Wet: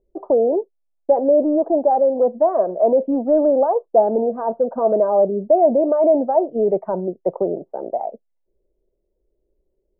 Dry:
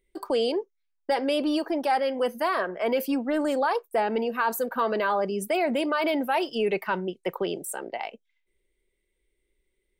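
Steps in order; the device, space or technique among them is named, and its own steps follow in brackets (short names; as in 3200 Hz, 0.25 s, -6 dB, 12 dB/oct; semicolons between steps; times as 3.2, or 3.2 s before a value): under water (LPF 750 Hz 24 dB/oct; bell 640 Hz +9.5 dB 0.59 oct); gain +5.5 dB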